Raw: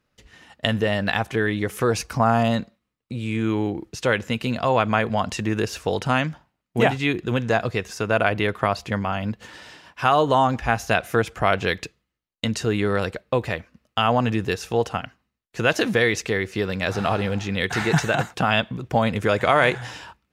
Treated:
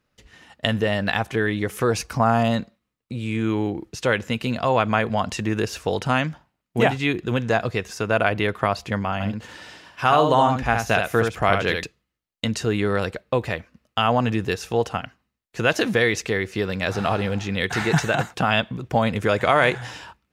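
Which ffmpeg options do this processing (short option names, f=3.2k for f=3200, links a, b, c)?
-filter_complex "[0:a]asettb=1/sr,asplit=3[a][b][c];[a]atrim=end=9.134[d];[b]atrim=start=9.13:end=11.84,asetpts=PTS-STARTPTS,afade=t=in:d=0.004:c=qsin,afade=t=out:st=2.706:d=0.004:c=qsin,aecho=1:1:71:0.562,atrim=end_sample=119511[e];[c]atrim=start=11.836[f];[d][e]acrossfade=d=0.004:c1=hsin:c2=qsin[g];[g][f]acrossfade=d=0.004:c1=qsin:c2=hsin"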